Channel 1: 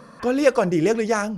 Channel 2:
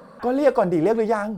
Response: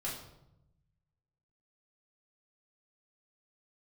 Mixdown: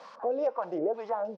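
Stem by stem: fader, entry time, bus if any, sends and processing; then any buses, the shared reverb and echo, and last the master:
−1.0 dB, 0.00 s, send −22.5 dB, meter weighting curve D; bit-depth reduction 6 bits, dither triangular; auto-filter low-pass square 3.2 Hz 460–5,100 Hz; automatic ducking −9 dB, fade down 0.30 s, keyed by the second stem
+2.5 dB, 0.7 ms, no send, running median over 15 samples; spectral tilt −3 dB per octave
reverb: on, RT60 0.85 s, pre-delay 3 ms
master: low-shelf EQ 280 Hz −11.5 dB; LFO wah 2.1 Hz 500–1,100 Hz, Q 3.1; downward compressor 2.5 to 1, threshold −29 dBFS, peak gain reduction 10 dB

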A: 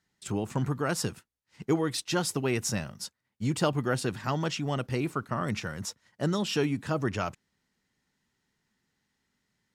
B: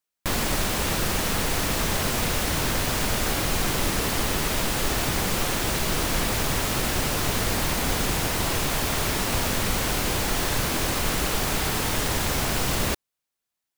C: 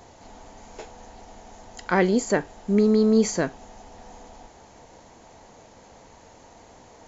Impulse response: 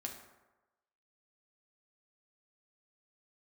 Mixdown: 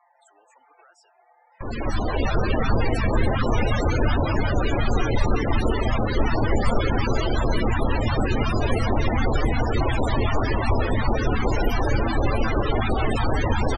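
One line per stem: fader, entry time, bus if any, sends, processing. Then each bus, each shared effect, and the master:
−12.5 dB, 0.00 s, bus A, no send, no echo send, background raised ahead of every attack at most 140 dB per second
−0.5 dB, 1.35 s, no bus, no send, echo send −3 dB, automatic gain control gain up to 14 dB; notch on a step sequencer 11 Hz 210–4,500 Hz
−2.0 dB, 0.00 s, bus A, no send, no echo send, low-pass filter 2,500 Hz 24 dB per octave; comb filter 5.8 ms, depth 96%; flanger 0.48 Hz, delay 0.9 ms, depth 2.3 ms, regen −16%
bus A: 0.0 dB, high-pass filter 870 Hz 12 dB per octave; downward compressor 5 to 1, threshold −46 dBFS, peak gain reduction 21 dB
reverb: not used
echo: single-tap delay 347 ms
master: parametric band 170 Hz −14.5 dB 0.23 octaves; tuned comb filter 110 Hz, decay 0.6 s, harmonics all, mix 40%; spectral peaks only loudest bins 32

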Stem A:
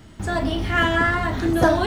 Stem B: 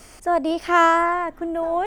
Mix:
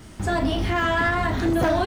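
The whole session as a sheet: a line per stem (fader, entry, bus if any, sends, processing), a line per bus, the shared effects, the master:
+1.5 dB, 0.00 s, no send, de-essing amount 70%; soft clipping −14 dBFS, distortion −16 dB
−4.0 dB, 2.1 ms, polarity flipped, no send, micro pitch shift up and down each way 13 cents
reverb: not used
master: brickwall limiter −14.5 dBFS, peak gain reduction 6.5 dB

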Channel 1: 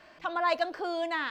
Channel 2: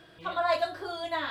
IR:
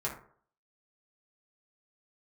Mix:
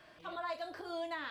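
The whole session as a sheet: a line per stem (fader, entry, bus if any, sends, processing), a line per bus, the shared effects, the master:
−6.0 dB, 0.00 s, no send, transient designer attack +5 dB, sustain 0 dB; brickwall limiter −20 dBFS, peak gain reduction 7 dB; volume swells 149 ms
−11.5 dB, 0.00 s, no send, high-shelf EQ 5,600 Hz +6 dB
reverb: not used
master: downward compressor, threshold −36 dBFS, peak gain reduction 9 dB

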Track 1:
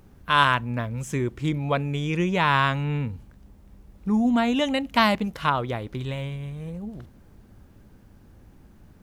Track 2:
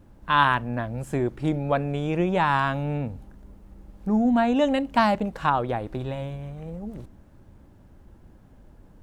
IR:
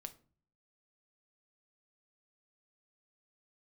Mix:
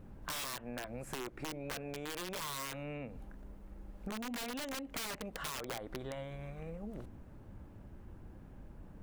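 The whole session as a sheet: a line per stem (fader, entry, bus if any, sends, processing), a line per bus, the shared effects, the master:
−5.5 dB, 0.00 s, no send, elliptic low-pass filter 2,800 Hz, stop band 80 dB
−2.5 dB, 0.00 s, polarity flipped, no send, downward compressor 5 to 1, threshold −24 dBFS, peak gain reduction 10 dB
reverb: not used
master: parametric band 5,900 Hz −3 dB 2.5 octaves; wrap-around overflow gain 25.5 dB; downward compressor, threshold −39 dBFS, peak gain reduction 10 dB

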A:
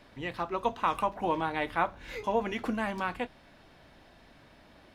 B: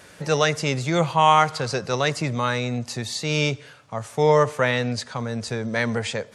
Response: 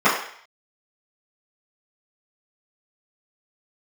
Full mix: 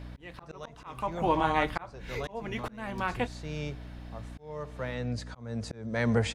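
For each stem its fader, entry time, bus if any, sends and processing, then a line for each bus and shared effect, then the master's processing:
+3.0 dB, 0.00 s, no send, no processing
−3.5 dB, 0.20 s, no send, tilt shelving filter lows +4 dB, about 1,500 Hz; automatic ducking −14 dB, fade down 0.90 s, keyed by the first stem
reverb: not used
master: low-shelf EQ 78 Hz +6.5 dB; mains hum 60 Hz, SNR 14 dB; volume swells 472 ms

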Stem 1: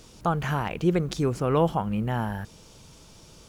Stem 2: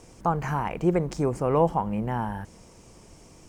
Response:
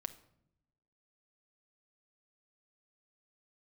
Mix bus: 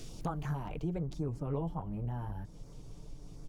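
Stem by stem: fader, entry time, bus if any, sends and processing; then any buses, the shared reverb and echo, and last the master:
+1.5 dB, 0.00 s, no send, notch on a step sequencer 11 Hz 960–2,800 Hz; automatic ducking −13 dB, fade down 1.10 s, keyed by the second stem
−11.0 dB, 2.1 ms, no send, spectral tilt −4 dB per octave; comb filter 6.9 ms, depth 69%; pitch modulation by a square or saw wave saw up 3.9 Hz, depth 100 cents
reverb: not used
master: downward compressor 2 to 1, threshold −41 dBFS, peak gain reduction 12.5 dB

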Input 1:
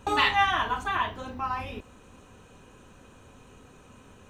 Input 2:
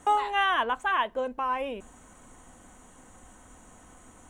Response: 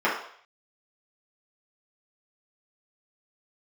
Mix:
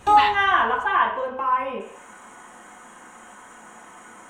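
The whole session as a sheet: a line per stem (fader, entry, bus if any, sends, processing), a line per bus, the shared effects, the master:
+1.5 dB, 0.00 s, no send, automatic ducking −19 dB, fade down 1.55 s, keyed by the second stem
−9.0 dB, 0.00 s, send −3 dB, no processing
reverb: on, RT60 0.60 s, pre-delay 3 ms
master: one half of a high-frequency compander encoder only

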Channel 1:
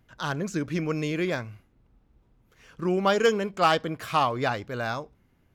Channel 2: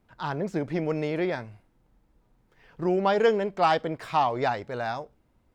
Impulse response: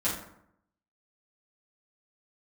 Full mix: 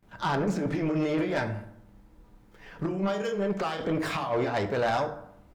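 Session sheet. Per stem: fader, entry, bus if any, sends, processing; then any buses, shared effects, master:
−12.5 dB, 0.00 s, send −11 dB, no processing
+2.0 dB, 26 ms, send −13.5 dB, compressor whose output falls as the input rises −30 dBFS, ratio −0.5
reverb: on, RT60 0.70 s, pre-delay 5 ms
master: soft clipping −20.5 dBFS, distortion −14 dB

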